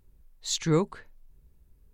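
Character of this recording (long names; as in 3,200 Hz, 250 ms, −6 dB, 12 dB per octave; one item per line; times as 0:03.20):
background noise floor −61 dBFS
spectral slope −4.5 dB per octave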